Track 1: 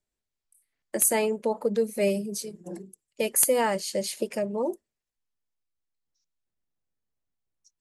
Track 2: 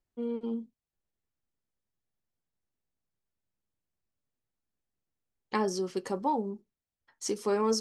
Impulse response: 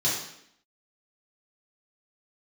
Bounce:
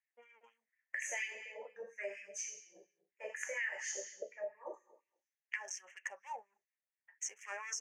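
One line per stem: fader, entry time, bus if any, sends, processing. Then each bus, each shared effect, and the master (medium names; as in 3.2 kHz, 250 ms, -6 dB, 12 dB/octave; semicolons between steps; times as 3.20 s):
-3.5 dB, 0.00 s, send -7.5 dB, high-order bell 1.3 kHz -14.5 dB 2.9 oct; LFO low-pass saw up 0.76 Hz 380–4000 Hz; reverb removal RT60 1 s
-6.0 dB, 0.00 s, no send, local Wiener filter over 9 samples; random flutter of the level, depth 60%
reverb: on, RT60 0.70 s, pre-delay 3 ms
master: FFT filter 130 Hz 0 dB, 180 Hz -17 dB, 330 Hz -21 dB, 570 Hz -6 dB, 1.3 kHz -7 dB, 1.8 kHz +14 dB, 2.8 kHz +8 dB, 4.1 kHz -25 dB, 6.2 kHz +15 dB, 9.8 kHz -2 dB; LFO high-pass sine 4.2 Hz 620–2100 Hz; compression 4:1, threshold -38 dBFS, peak gain reduction 14 dB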